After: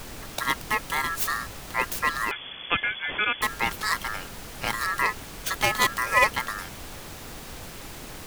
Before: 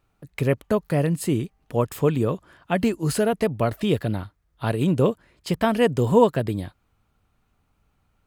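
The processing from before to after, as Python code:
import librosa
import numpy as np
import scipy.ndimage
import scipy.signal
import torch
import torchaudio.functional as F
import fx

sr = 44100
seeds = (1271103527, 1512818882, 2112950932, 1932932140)

y = fx.tracing_dist(x, sr, depth_ms=0.2)
y = fx.tilt_eq(y, sr, slope=3.0)
y = y * np.sin(2.0 * np.pi * 1500.0 * np.arange(len(y)) / sr)
y = fx.dmg_noise_colour(y, sr, seeds[0], colour='pink', level_db=-41.0)
y = fx.freq_invert(y, sr, carrier_hz=3400, at=(2.31, 3.42))
y = F.gain(torch.from_numpy(y), 1.5).numpy()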